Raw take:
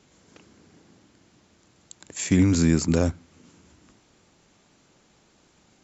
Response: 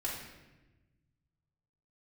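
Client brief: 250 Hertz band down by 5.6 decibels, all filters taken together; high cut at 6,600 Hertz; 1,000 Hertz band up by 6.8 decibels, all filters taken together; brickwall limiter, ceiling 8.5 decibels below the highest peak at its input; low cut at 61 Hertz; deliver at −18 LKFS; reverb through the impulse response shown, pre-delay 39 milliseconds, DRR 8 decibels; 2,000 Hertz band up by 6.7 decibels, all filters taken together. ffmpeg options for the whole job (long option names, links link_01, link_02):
-filter_complex "[0:a]highpass=61,lowpass=6600,equalizer=frequency=250:width_type=o:gain=-8,equalizer=frequency=1000:width_type=o:gain=8,equalizer=frequency=2000:width_type=o:gain=6,alimiter=limit=-16.5dB:level=0:latency=1,asplit=2[link_01][link_02];[1:a]atrim=start_sample=2205,adelay=39[link_03];[link_02][link_03]afir=irnorm=-1:irlink=0,volume=-11dB[link_04];[link_01][link_04]amix=inputs=2:normalize=0,volume=10dB"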